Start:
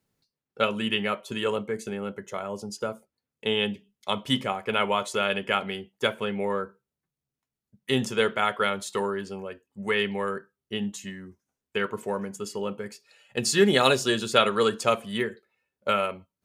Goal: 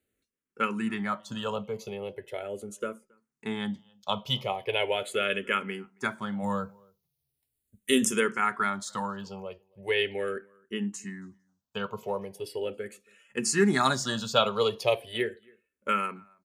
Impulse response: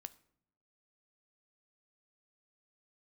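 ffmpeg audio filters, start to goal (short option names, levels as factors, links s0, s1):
-filter_complex "[0:a]asplit=3[s0][s1][s2];[s0]afade=t=out:st=6.42:d=0.02[s3];[s1]bass=f=250:g=8,treble=f=4000:g=14,afade=t=in:st=6.42:d=0.02,afade=t=out:st=8.19:d=0.02[s4];[s2]afade=t=in:st=8.19:d=0.02[s5];[s3][s4][s5]amix=inputs=3:normalize=0,asplit=2[s6][s7];[s7]adelay=274.1,volume=0.0355,highshelf=f=4000:g=-6.17[s8];[s6][s8]amix=inputs=2:normalize=0,asplit=2[s9][s10];[s10]afreqshift=-0.39[s11];[s9][s11]amix=inputs=2:normalize=1"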